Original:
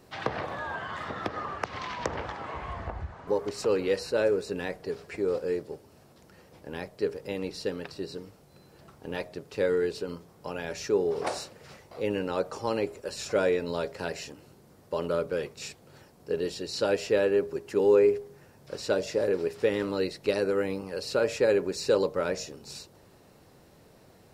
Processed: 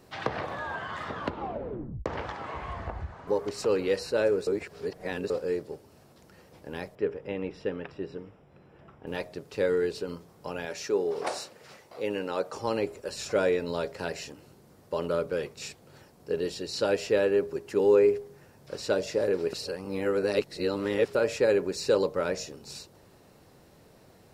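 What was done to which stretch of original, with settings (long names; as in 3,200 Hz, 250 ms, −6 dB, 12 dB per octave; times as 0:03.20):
0:01.10: tape stop 0.96 s
0:04.47–0:05.30: reverse
0:06.95–0:09.07: Savitzky-Golay smoothing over 25 samples
0:10.65–0:12.54: high-pass filter 270 Hz 6 dB per octave
0:19.53–0:21.15: reverse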